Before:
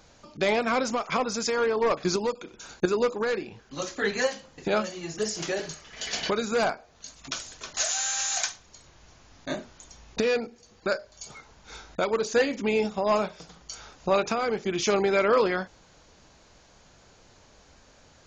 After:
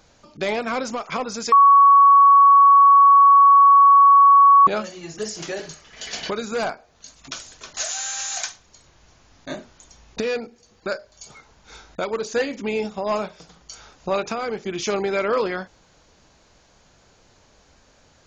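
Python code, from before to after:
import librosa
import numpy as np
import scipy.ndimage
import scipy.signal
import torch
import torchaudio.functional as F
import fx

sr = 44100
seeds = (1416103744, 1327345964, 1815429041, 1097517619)

y = fx.edit(x, sr, fx.bleep(start_s=1.52, length_s=3.15, hz=1120.0, db=-8.0), tone=tone)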